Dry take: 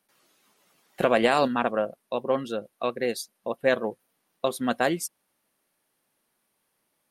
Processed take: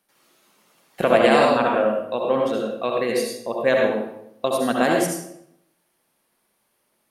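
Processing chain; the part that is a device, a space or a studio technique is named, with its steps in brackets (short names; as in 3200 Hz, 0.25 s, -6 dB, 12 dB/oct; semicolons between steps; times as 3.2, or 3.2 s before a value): bathroom (reverb RT60 0.80 s, pre-delay 62 ms, DRR -1 dB); gain +2 dB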